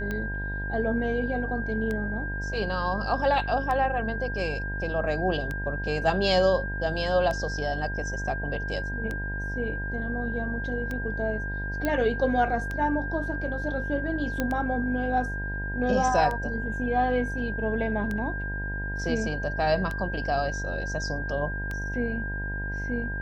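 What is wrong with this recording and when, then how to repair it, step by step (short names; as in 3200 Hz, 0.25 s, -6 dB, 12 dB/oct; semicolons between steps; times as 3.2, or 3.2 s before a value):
buzz 50 Hz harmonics 20 -33 dBFS
tick 33 1/3 rpm -19 dBFS
tone 1600 Hz -33 dBFS
11.85 pop -14 dBFS
14.4 pop -13 dBFS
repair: de-click; de-hum 50 Hz, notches 20; notch 1600 Hz, Q 30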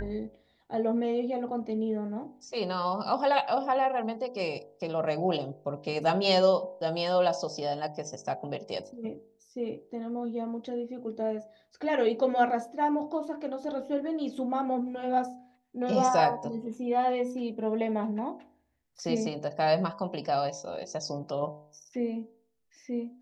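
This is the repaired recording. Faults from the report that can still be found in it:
none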